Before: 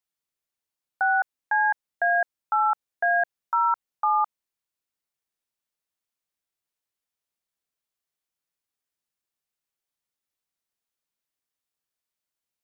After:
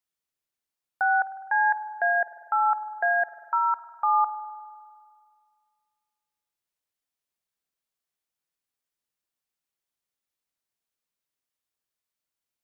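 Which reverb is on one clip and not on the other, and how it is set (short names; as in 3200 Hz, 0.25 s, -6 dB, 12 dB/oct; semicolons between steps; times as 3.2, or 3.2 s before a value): spring tank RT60 2 s, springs 49 ms, chirp 50 ms, DRR 12 dB; gain -1 dB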